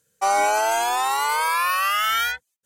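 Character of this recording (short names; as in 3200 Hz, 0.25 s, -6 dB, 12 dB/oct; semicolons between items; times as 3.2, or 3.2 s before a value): noise floor -76 dBFS; spectral tilt -0.5 dB/oct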